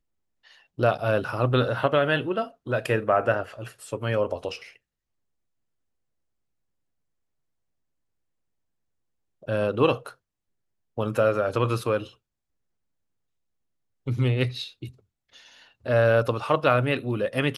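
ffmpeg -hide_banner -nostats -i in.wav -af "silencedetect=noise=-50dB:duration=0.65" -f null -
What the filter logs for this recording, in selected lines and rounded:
silence_start: 4.76
silence_end: 9.42 | silence_duration: 4.66
silence_start: 10.14
silence_end: 10.97 | silence_duration: 0.83
silence_start: 12.14
silence_end: 14.06 | silence_duration: 1.92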